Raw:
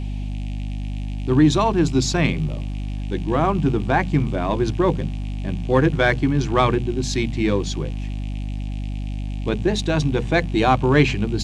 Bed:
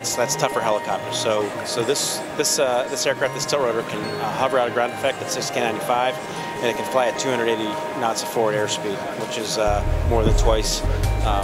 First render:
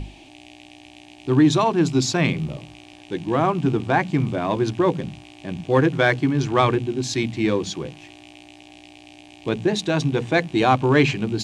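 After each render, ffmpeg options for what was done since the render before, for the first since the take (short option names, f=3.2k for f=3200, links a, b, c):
-af "bandreject=f=50:t=h:w=6,bandreject=f=100:t=h:w=6,bandreject=f=150:t=h:w=6,bandreject=f=200:t=h:w=6,bandreject=f=250:t=h:w=6"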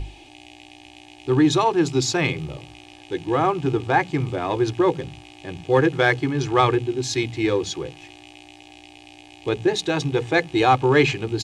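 -af "equalizer=f=210:t=o:w=0.52:g=-9,aecho=1:1:2.4:0.41"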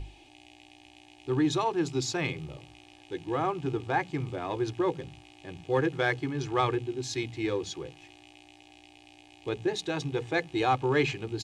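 -af "volume=-9dB"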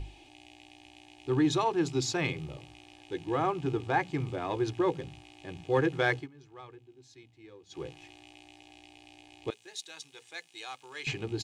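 -filter_complex "[0:a]asettb=1/sr,asplit=3[a][b][c];[a]atrim=end=9.504[d];[b]atrim=start=9.5:end=11.07,asetpts=PTS-STARTPTS,afade=t=in:d=0.004:c=qsin,afade=t=out:st=1.566:d=0.004:c=qsin,aderivative[e];[c]atrim=start=11.066[f];[d][e]acrossfade=d=0.004:c1=hsin:c2=qsin[g];[g][f]acrossfade=d=0.004:c1=qsin:c2=hsin,asplit=3[h][i][j];[h]atrim=end=6.28,asetpts=PTS-STARTPTS,afade=t=out:st=6.16:d=0.12:silence=0.0794328[k];[i]atrim=start=6.28:end=7.69,asetpts=PTS-STARTPTS,volume=-22dB[l];[j]atrim=start=7.69,asetpts=PTS-STARTPTS,afade=t=in:d=0.12:silence=0.0794328[m];[k][l][m]concat=n=3:v=0:a=1"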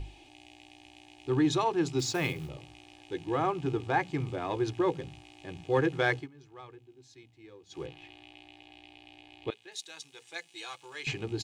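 -filter_complex "[0:a]asettb=1/sr,asplit=3[a][b][c];[a]atrim=end=1.994[d];[b]atrim=start=1.99:end=2.49,asetpts=PTS-STARTPTS,afade=t=in:d=0.004:c=qsin,afade=t=out:st=0.496:d=0.004:c=qsin,acrusher=bits=5:mode=log:mix=0:aa=0.000001[e];[c]atrim=start=2.486[f];[d][e]acrossfade=d=0.004:c1=hsin:c2=qsin[g];[g][f]acrossfade=d=0.004:c1=qsin:c2=hsin,asettb=1/sr,asplit=3[h][i][j];[h]atrim=end=7.864[k];[i]atrim=start=7.86:end=9.72,asetpts=PTS-STARTPTS,afade=t=in:d=0.004:c=qsin,afade=t=out:st=1.856:d=0.004:c=qsin,highshelf=f=4.6k:t=q:w=1.5:g=-8.5[l];[j]atrim=start=9.716[m];[k][l]acrossfade=d=0.004:c1=hsin:c2=qsin[n];[n][m]acrossfade=d=0.004:c1=qsin:c2=hsin,asettb=1/sr,asplit=3[o][p][q];[o]atrim=end=10.274[r];[p]atrim=start=10.27:end=10.95,asetpts=PTS-STARTPTS,afade=t=in:d=0.004:c=qsin,afade=t=out:st=0.676:d=0.004:c=qsin,aecho=1:1:5.9:0.65,atrim=end_sample=29988[s];[q]atrim=start=10.946[t];[r][s]acrossfade=d=0.004:c1=hsin:c2=qsin[u];[u][t]acrossfade=d=0.004:c1=qsin:c2=hsin"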